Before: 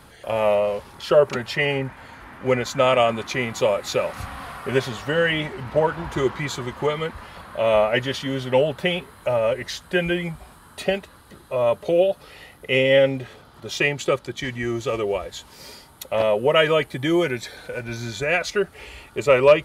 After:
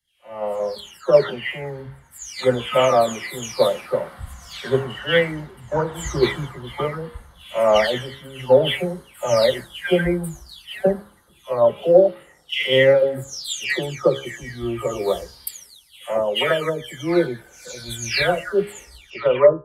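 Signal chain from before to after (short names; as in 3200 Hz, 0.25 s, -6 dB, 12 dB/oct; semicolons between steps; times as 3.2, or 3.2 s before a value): spectral delay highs early, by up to 0.548 s; high shelf 7400 Hz +5 dB; notch 2500 Hz, Q 7.6; de-hum 68.19 Hz, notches 25; AGC gain up to 11 dB; three-band expander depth 100%; gain -5.5 dB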